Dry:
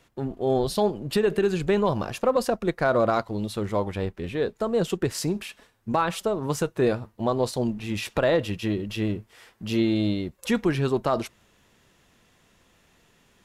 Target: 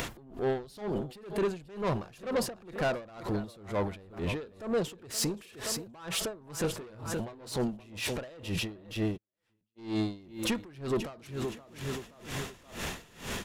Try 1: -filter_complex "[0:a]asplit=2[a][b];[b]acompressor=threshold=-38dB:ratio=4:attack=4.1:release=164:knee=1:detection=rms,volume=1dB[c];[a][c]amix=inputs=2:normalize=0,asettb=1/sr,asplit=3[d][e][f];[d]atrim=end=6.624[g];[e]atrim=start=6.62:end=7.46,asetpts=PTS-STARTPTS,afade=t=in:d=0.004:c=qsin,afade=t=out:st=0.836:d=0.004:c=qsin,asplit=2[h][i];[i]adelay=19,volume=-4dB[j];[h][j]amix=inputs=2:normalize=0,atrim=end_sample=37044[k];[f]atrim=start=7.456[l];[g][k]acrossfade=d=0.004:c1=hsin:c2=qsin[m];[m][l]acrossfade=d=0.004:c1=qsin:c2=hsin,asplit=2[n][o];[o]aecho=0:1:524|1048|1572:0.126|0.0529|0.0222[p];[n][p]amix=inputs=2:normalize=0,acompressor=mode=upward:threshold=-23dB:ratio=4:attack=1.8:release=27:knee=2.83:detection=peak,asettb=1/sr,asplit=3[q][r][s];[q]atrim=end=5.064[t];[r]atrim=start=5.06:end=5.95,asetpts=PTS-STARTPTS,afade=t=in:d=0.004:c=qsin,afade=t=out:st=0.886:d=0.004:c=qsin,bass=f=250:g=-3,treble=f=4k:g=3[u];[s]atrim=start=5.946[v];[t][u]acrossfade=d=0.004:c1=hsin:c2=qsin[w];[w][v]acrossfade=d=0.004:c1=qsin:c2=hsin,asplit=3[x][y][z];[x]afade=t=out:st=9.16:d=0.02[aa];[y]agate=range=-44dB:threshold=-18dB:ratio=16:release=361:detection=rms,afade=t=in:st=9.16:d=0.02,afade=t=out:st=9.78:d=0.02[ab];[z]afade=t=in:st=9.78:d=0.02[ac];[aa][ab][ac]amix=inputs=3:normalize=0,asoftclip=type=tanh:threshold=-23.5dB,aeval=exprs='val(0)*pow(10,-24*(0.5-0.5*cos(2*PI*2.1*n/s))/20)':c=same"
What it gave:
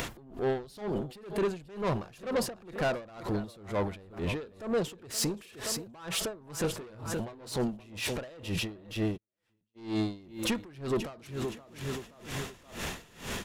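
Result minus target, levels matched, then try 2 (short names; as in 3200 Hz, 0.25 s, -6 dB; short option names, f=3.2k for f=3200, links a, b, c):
compressor: peak gain reduction -7 dB
-filter_complex "[0:a]asplit=2[a][b];[b]acompressor=threshold=-47dB:ratio=4:attack=4.1:release=164:knee=1:detection=rms,volume=1dB[c];[a][c]amix=inputs=2:normalize=0,asettb=1/sr,asplit=3[d][e][f];[d]atrim=end=6.624[g];[e]atrim=start=6.62:end=7.46,asetpts=PTS-STARTPTS,afade=t=in:d=0.004:c=qsin,afade=t=out:st=0.836:d=0.004:c=qsin,asplit=2[h][i];[i]adelay=19,volume=-4dB[j];[h][j]amix=inputs=2:normalize=0,atrim=end_sample=37044[k];[f]atrim=start=7.456[l];[g][k]acrossfade=d=0.004:c1=hsin:c2=qsin[m];[m][l]acrossfade=d=0.004:c1=qsin:c2=hsin,asplit=2[n][o];[o]aecho=0:1:524|1048|1572:0.126|0.0529|0.0222[p];[n][p]amix=inputs=2:normalize=0,acompressor=mode=upward:threshold=-23dB:ratio=4:attack=1.8:release=27:knee=2.83:detection=peak,asettb=1/sr,asplit=3[q][r][s];[q]atrim=end=5.064[t];[r]atrim=start=5.06:end=5.95,asetpts=PTS-STARTPTS,afade=t=in:d=0.004:c=qsin,afade=t=out:st=0.886:d=0.004:c=qsin,bass=f=250:g=-3,treble=f=4k:g=3[u];[s]atrim=start=5.946[v];[t][u]acrossfade=d=0.004:c1=hsin:c2=qsin[w];[w][v]acrossfade=d=0.004:c1=qsin:c2=hsin,asplit=3[x][y][z];[x]afade=t=out:st=9.16:d=0.02[aa];[y]agate=range=-44dB:threshold=-18dB:ratio=16:release=361:detection=rms,afade=t=in:st=9.16:d=0.02,afade=t=out:st=9.78:d=0.02[ab];[z]afade=t=in:st=9.78:d=0.02[ac];[aa][ab][ac]amix=inputs=3:normalize=0,asoftclip=type=tanh:threshold=-23.5dB,aeval=exprs='val(0)*pow(10,-24*(0.5-0.5*cos(2*PI*2.1*n/s))/20)':c=same"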